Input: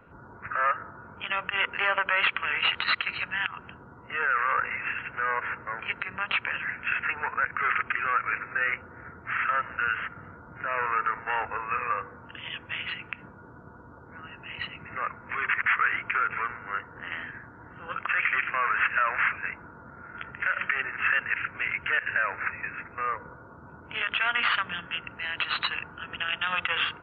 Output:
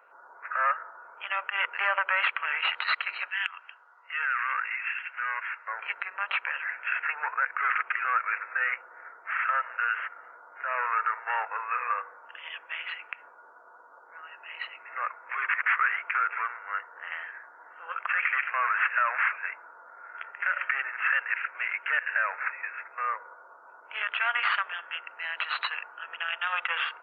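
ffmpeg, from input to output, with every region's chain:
ffmpeg -i in.wav -filter_complex "[0:a]asettb=1/sr,asplit=3[link_01][link_02][link_03];[link_01]atrim=end=3.284[link_04];[link_02]atrim=start=3.28:end=5.68,asetpts=PTS-STARTPTS,afade=type=in:duration=0.004:curve=qsin,afade=type=out:start_time=2.396:duration=0.004:curve=qsin,bandpass=frequency=3400:width_type=q:width=1.2,acontrast=38[link_05];[link_03]atrim=start=5.676[link_06];[link_04][link_05]acrossfade=duration=0.004:curve1=hsin:curve2=qsin[link_07];[link_07][link_06]acrossfade=duration=0.004:curve1=qsin:curve2=hsin,highpass=frequency=590:width=0.5412,highpass=frequency=590:width=1.3066,equalizer=frequency=3400:width_type=o:width=0.62:gain=-7" out.wav

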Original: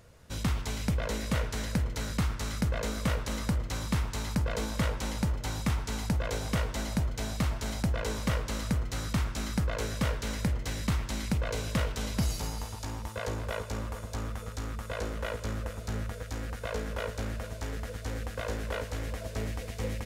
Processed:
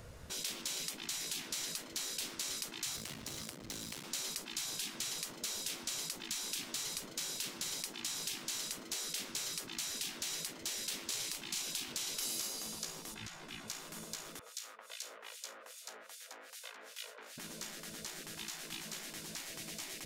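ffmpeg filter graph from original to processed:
ffmpeg -i in.wav -filter_complex "[0:a]asettb=1/sr,asplit=3[link_01][link_02][link_03];[link_01]atrim=end=2.964[link_04];[link_02]atrim=start=2.96:end=4.04,asetpts=PTS-STARTPTS,afade=type=in:duration=0.004:curve=qsin,afade=type=out:start_time=1.076:duration=0.004:curve=qsin,highpass=93,acompressor=threshold=-38dB:ratio=1.5:attack=3.2:release=140:knee=1:detection=peak,aeval=exprs='max(val(0),0)':channel_layout=same[link_05];[link_03]atrim=start=4.036[link_06];[link_04][link_05]acrossfade=duration=0.004:curve1=hsin:curve2=qsin[link_07];[link_07][link_06]acrossfade=duration=0.004:curve1=qsin:curve2=hsin,asettb=1/sr,asplit=3[link_08][link_09][link_10];[link_08]atrim=end=11.064[link_11];[link_09]atrim=start=11.06:end=11.62,asetpts=PTS-STARTPTS,afade=type=in:duration=0.004:curve=qsin,afade=type=out:start_time=0.556:duration=0.004:curve=qsin,asoftclip=type=hard:threshold=-22dB,asplit=2[link_12][link_13];[link_13]adelay=33,volume=-5.5dB[link_14];[link_12][link_14]amix=inputs=2:normalize=0,atrim=end_sample=24696[link_15];[link_10]atrim=start=11.616[link_16];[link_11][link_15]acrossfade=duration=0.004:curve1=hsin:curve2=qsin[link_17];[link_17][link_16]acrossfade=duration=0.004:curve1=qsin:curve2=hsin,asettb=1/sr,asplit=3[link_18][link_19][link_20];[link_18]atrim=end=13.144[link_21];[link_19]atrim=start=13.14:end=13.68,asetpts=PTS-STARTPTS,afade=type=in:duration=0.004:curve=qsin,afade=type=out:start_time=0.536:duration=0.004:curve=qsin,lowpass=frequency=2200:poles=1,bandreject=frequency=1200:width=14,asplit=2[link_22][link_23];[link_23]adelay=14,volume=-5dB[link_24];[link_22][link_24]amix=inputs=2:normalize=0,atrim=end_sample=23814[link_25];[link_20]atrim=start=13.676[link_26];[link_21][link_25]acrossfade=duration=0.004:curve1=hsin:curve2=qsin[link_27];[link_27][link_26]acrossfade=duration=0.004:curve1=qsin:curve2=hsin,asettb=1/sr,asplit=3[link_28][link_29][link_30];[link_28]atrim=end=14.394[link_31];[link_29]atrim=start=14.39:end=17.38,asetpts=PTS-STARTPTS,afade=type=in:duration=0.004:curve=qsin,afade=type=out:start_time=2.986:duration=0.004:curve=qsin,highpass=frequency=580:width=0.5412,highpass=frequency=580:width=1.3066,acrossover=split=2300[link_32][link_33];[link_32]aeval=exprs='val(0)*(1-1/2+1/2*cos(2*PI*2.5*n/s))':channel_layout=same[link_34];[link_33]aeval=exprs='val(0)*(1-1/2-1/2*cos(2*PI*2.5*n/s))':channel_layout=same[link_35];[link_34][link_35]amix=inputs=2:normalize=0[link_36];[link_30]atrim=start=17.376[link_37];[link_31][link_36]acrossfade=duration=0.004:curve1=hsin:curve2=qsin[link_38];[link_38][link_37]acrossfade=duration=0.004:curve1=qsin:curve2=hsin,afftfilt=real='re*lt(hypot(re,im),0.0282)':imag='im*lt(hypot(re,im),0.0282)':win_size=1024:overlap=0.75,acrossover=split=340|3000[link_39][link_40][link_41];[link_40]acompressor=threshold=-59dB:ratio=5[link_42];[link_39][link_42][link_41]amix=inputs=3:normalize=0,volume=4.5dB" out.wav

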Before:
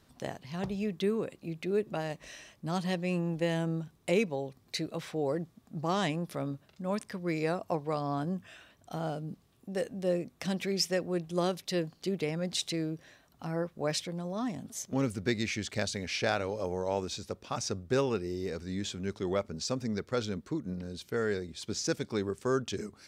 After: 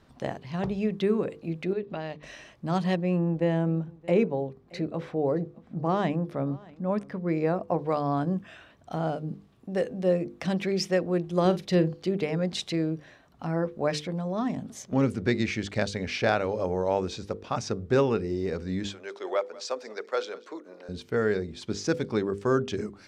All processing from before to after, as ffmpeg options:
ffmpeg -i in.wav -filter_complex "[0:a]asettb=1/sr,asplit=3[link_01][link_02][link_03];[link_01]atrim=end=1.734[link_04];[link_02]atrim=start=1.73:end=2.23,asetpts=PTS-STARTPTS,afade=type=in:duration=0.004:curve=qsin,afade=type=out:start_time=0.496:duration=0.004:curve=qsin,acompressor=threshold=-40dB:ratio=2:attack=3.2:release=140:knee=1:detection=peak,lowpass=frequency=4000:width_type=q:width=1.7,agate=range=-6dB:threshold=-49dB:ratio=16:release=100:detection=peak[link_05];[link_03]atrim=start=2.226[link_06];[link_04][link_05]acrossfade=duration=0.004:curve1=hsin:curve2=qsin[link_07];[link_07][link_06]acrossfade=duration=0.004:curve1=qsin:curve2=hsin,asettb=1/sr,asplit=3[link_08][link_09][link_10];[link_08]atrim=end=2.964[link_11];[link_09]atrim=start=2.96:end=7.79,asetpts=PTS-STARTPTS,afade=type=in:duration=0.004:curve=qsin,afade=type=out:start_time=4.826:duration=0.004:curve=qsin,highshelf=frequency=2000:gain=-10.5,aecho=1:1:623:0.0708,atrim=end_sample=213003[link_12];[link_10]atrim=start=7.786[link_13];[link_11][link_12]acrossfade=duration=0.004:curve1=hsin:curve2=qsin[link_14];[link_14][link_13]acrossfade=duration=0.004:curve1=qsin:curve2=hsin,asettb=1/sr,asplit=3[link_15][link_16][link_17];[link_15]atrim=end=11.454[link_18];[link_16]atrim=start=11.45:end=11.96,asetpts=PTS-STARTPTS,afade=type=in:duration=0.004:curve=qsin,afade=type=out:start_time=0.506:duration=0.004:curve=qsin,lowshelf=frequency=350:gain=6.5,asplit=2[link_19][link_20];[link_20]adelay=44,volume=-14dB[link_21];[link_19][link_21]amix=inputs=2:normalize=0,atrim=end_sample=22491[link_22];[link_17]atrim=start=11.956[link_23];[link_18][link_22]acrossfade=duration=0.004:curve1=hsin:curve2=qsin[link_24];[link_24][link_23]acrossfade=duration=0.004:curve1=qsin:curve2=hsin,asettb=1/sr,asplit=3[link_25][link_26][link_27];[link_25]atrim=end=18.894[link_28];[link_26]atrim=start=18.89:end=20.89,asetpts=PTS-STARTPTS,afade=type=in:duration=0.004:curve=qsin,afade=type=out:start_time=1.996:duration=0.004:curve=qsin,highpass=frequency=450:width=0.5412,highpass=frequency=450:width=1.3066,aecho=1:1:194:0.1,atrim=end_sample=88200[link_29];[link_27]atrim=start=20.886[link_30];[link_28][link_29]acrossfade=duration=0.004:curve1=hsin:curve2=qsin[link_31];[link_31][link_30]acrossfade=duration=0.004:curve1=qsin:curve2=hsin,aemphasis=mode=reproduction:type=75kf,bandreject=frequency=50:width_type=h:width=6,bandreject=frequency=100:width_type=h:width=6,bandreject=frequency=150:width_type=h:width=6,bandreject=frequency=200:width_type=h:width=6,bandreject=frequency=250:width_type=h:width=6,bandreject=frequency=300:width_type=h:width=6,bandreject=frequency=350:width_type=h:width=6,bandreject=frequency=400:width_type=h:width=6,bandreject=frequency=450:width_type=h:width=6,bandreject=frequency=500:width_type=h:width=6,volume=6.5dB" out.wav

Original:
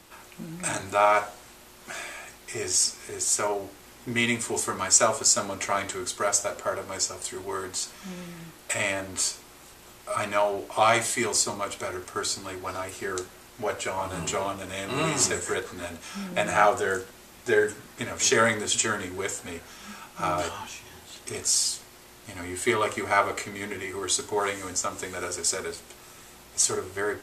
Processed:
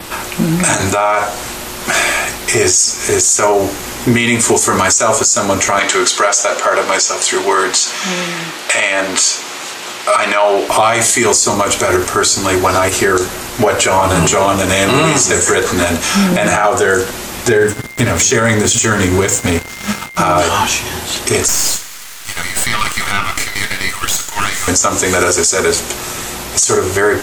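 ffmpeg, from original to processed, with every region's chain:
ffmpeg -i in.wav -filter_complex "[0:a]asettb=1/sr,asplit=3[link_01][link_02][link_03];[link_01]atrim=end=5.794[link_04];[link_02]atrim=start=5.79:end=10.69,asetpts=PTS-STARTPTS,afade=type=in:duration=0.004:curve=qsin,afade=type=out:start_time=4.896:duration=0.004:curve=qsin,highpass=130,lowpass=3400,aemphasis=mode=production:type=riaa[link_05];[link_03]atrim=start=10.686[link_06];[link_04][link_05]acrossfade=duration=0.004:curve1=hsin:curve2=qsin[link_07];[link_07][link_06]acrossfade=duration=0.004:curve1=qsin:curve2=hsin,asettb=1/sr,asplit=3[link_08][link_09][link_10];[link_08]atrim=end=17.484[link_11];[link_09]atrim=start=17.48:end=20.17,asetpts=PTS-STARTPTS,afade=type=in:duration=0.004:curve=qsin,afade=type=out:start_time=2.686:duration=0.004:curve=qsin,equalizer=frequency=120:width_type=o:width=2:gain=9,aeval=exprs='sgn(val(0))*max(abs(val(0))-0.0075,0)':channel_layout=same,aeval=exprs='val(0)+0.00178*sin(2*PI*2100*n/s)':channel_layout=same[link_12];[link_10]atrim=start=20.166[link_13];[link_11][link_12]acrossfade=duration=0.004:curve1=hsin:curve2=qsin[link_14];[link_14][link_13]acrossfade=duration=0.004:curve1=qsin:curve2=hsin,asettb=1/sr,asplit=3[link_15][link_16][link_17];[link_15]atrim=end=21.484[link_18];[link_16]atrim=start=21.48:end=24.68,asetpts=PTS-STARTPTS,afade=type=in:duration=0.004:curve=qsin,afade=type=out:start_time=3.196:duration=0.004:curve=qsin,highpass=frequency=1200:width=0.5412,highpass=frequency=1200:width=1.3066,aeval=exprs='max(val(0),0)':channel_layout=same[link_19];[link_17]atrim=start=24.676[link_20];[link_18][link_19]acrossfade=duration=0.004:curve1=hsin:curve2=qsin[link_21];[link_21][link_20]acrossfade=duration=0.004:curve1=qsin:curve2=hsin,adynamicequalizer=threshold=0.00708:dfrequency=6700:dqfactor=5.2:tfrequency=6700:tqfactor=5.2:attack=5:release=100:ratio=0.375:range=4:mode=boostabove:tftype=bell,acompressor=threshold=-30dB:ratio=2.5,alimiter=level_in=26dB:limit=-1dB:release=50:level=0:latency=1,volume=-1dB" out.wav

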